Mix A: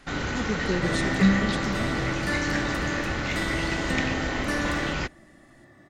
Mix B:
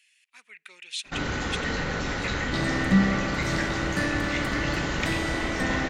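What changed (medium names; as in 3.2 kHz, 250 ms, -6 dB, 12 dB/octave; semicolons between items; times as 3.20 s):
speech: add resonant high-pass 2.5 kHz, resonance Q 4.2; first sound: entry +1.05 s; second sound: entry +1.70 s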